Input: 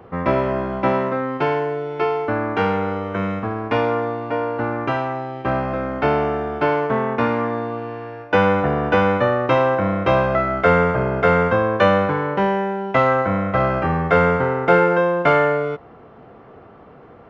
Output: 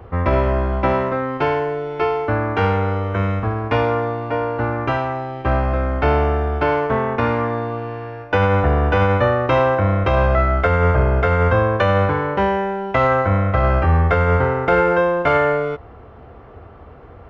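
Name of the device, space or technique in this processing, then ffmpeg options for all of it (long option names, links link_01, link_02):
car stereo with a boomy subwoofer: -af "lowshelf=frequency=110:width_type=q:width=1.5:gain=12.5,alimiter=limit=-8dB:level=0:latency=1:release=42,volume=1.5dB"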